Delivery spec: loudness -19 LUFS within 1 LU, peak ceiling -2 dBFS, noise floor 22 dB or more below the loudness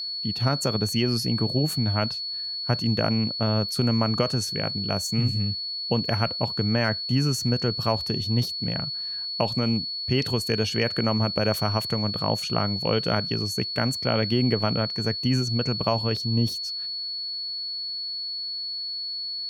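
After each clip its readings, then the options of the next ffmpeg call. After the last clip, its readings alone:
steady tone 4400 Hz; tone level -29 dBFS; loudness -25.0 LUFS; peak -6.5 dBFS; loudness target -19.0 LUFS
-> -af "bandreject=f=4.4k:w=30"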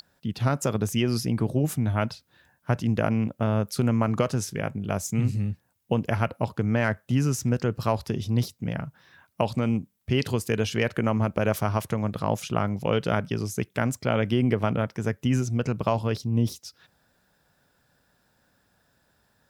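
steady tone none; loudness -26.5 LUFS; peak -7.0 dBFS; loudness target -19.0 LUFS
-> -af "volume=7.5dB,alimiter=limit=-2dB:level=0:latency=1"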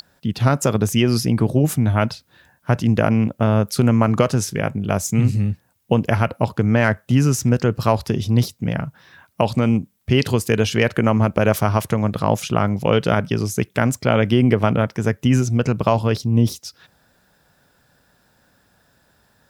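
loudness -19.0 LUFS; peak -2.0 dBFS; noise floor -61 dBFS

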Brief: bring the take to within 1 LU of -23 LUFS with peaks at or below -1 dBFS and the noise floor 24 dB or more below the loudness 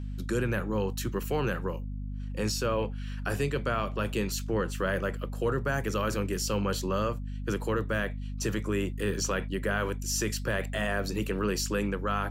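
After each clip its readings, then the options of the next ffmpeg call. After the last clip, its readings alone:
hum 50 Hz; harmonics up to 250 Hz; hum level -33 dBFS; loudness -31.0 LUFS; peak -16.0 dBFS; loudness target -23.0 LUFS
-> -af "bandreject=f=50:t=h:w=4,bandreject=f=100:t=h:w=4,bandreject=f=150:t=h:w=4,bandreject=f=200:t=h:w=4,bandreject=f=250:t=h:w=4"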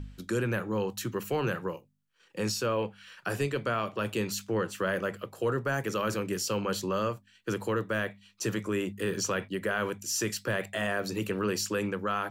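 hum none; loudness -31.5 LUFS; peak -17.5 dBFS; loudness target -23.0 LUFS
-> -af "volume=8.5dB"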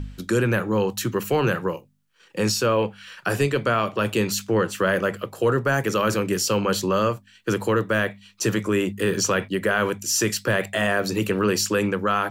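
loudness -23.0 LUFS; peak -9.0 dBFS; noise floor -56 dBFS

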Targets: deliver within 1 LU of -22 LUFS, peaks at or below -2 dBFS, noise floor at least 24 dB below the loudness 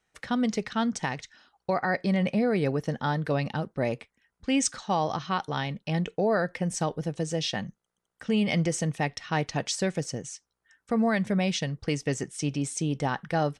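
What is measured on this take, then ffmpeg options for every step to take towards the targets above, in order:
loudness -28.5 LUFS; peak -12.5 dBFS; loudness target -22.0 LUFS
-> -af "volume=6.5dB"

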